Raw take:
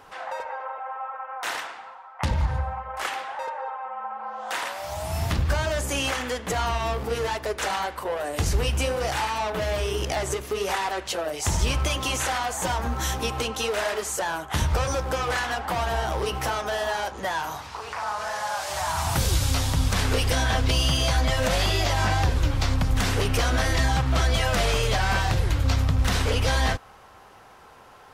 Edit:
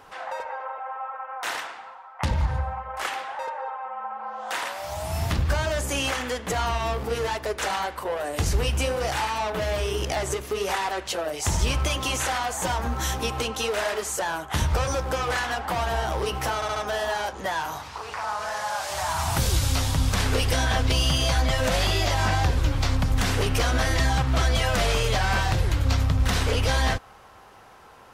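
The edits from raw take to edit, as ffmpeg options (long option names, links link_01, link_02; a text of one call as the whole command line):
ffmpeg -i in.wav -filter_complex "[0:a]asplit=4[link_01][link_02][link_03][link_04];[link_01]atrim=end=16.622[link_05];[link_02]atrim=start=16.548:end=16.622[link_06];[link_03]atrim=start=16.548:end=16.622[link_07];[link_04]atrim=start=16.548[link_08];[link_05][link_06]acrossfade=duration=0.004:curve1=hsin:curve2=hsin[link_09];[link_09][link_07]acrossfade=duration=0.004:curve1=hsin:curve2=hsin[link_10];[link_10][link_08]acrossfade=duration=0.004:curve1=hsin:curve2=hsin" out.wav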